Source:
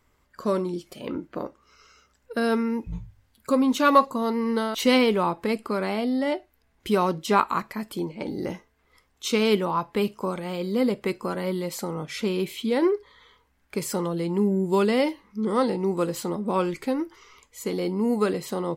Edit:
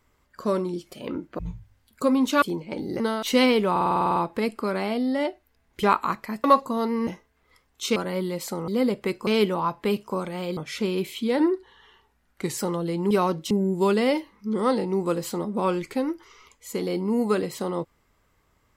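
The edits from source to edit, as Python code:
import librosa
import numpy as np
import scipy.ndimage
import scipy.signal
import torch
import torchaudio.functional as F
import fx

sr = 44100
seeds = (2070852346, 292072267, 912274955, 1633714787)

y = fx.edit(x, sr, fx.cut(start_s=1.39, length_s=1.47),
    fx.swap(start_s=3.89, length_s=0.63, other_s=7.91, other_length_s=0.58),
    fx.stutter(start_s=5.23, slice_s=0.05, count=10),
    fx.move(start_s=6.9, length_s=0.4, to_s=14.42),
    fx.swap(start_s=9.38, length_s=1.3, other_s=11.27, other_length_s=0.72),
    fx.speed_span(start_s=12.81, length_s=1.08, speed=0.91), tone=tone)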